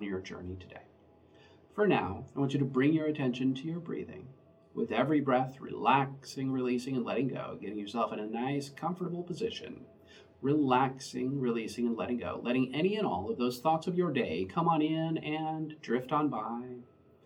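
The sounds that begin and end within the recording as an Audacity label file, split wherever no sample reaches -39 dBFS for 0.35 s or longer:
1.780000	4.200000	sound
4.760000	9.810000	sound
10.430000	16.770000	sound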